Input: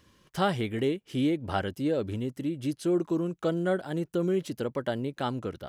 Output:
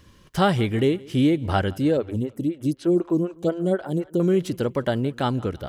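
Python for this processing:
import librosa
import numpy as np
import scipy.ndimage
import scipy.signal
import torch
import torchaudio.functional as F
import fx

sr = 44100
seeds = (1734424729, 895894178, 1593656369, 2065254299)

y = fx.low_shelf(x, sr, hz=97.0, db=10.5)
y = fx.echo_feedback(y, sr, ms=169, feedback_pct=48, wet_db=-23.5)
y = fx.stagger_phaser(y, sr, hz=4.0, at=(1.97, 4.2))
y = y * 10.0 ** (6.0 / 20.0)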